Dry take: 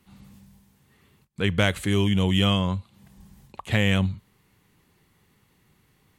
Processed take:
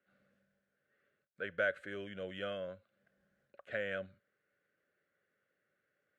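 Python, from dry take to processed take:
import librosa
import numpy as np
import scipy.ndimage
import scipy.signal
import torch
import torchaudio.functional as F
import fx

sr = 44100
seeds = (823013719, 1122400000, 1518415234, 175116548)

y = fx.double_bandpass(x, sr, hz=930.0, octaves=1.4)
y = y * librosa.db_to_amplitude(-3.5)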